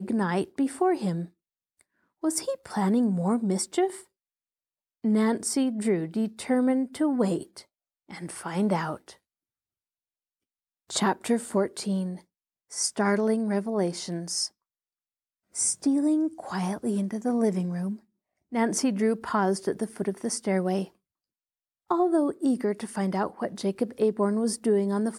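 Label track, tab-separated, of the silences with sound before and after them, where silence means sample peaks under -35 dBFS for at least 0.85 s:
1.250000	2.230000	silence
4.000000	5.040000	silence
9.100000	10.900000	silence
14.470000	15.550000	silence
20.850000	21.900000	silence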